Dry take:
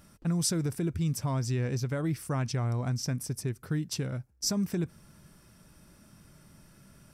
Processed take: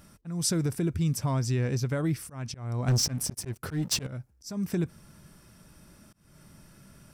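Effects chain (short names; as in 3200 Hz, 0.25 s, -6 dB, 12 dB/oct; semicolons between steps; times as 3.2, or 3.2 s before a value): auto swell 0.289 s; 2.88–4.07 sample leveller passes 3; gain +2.5 dB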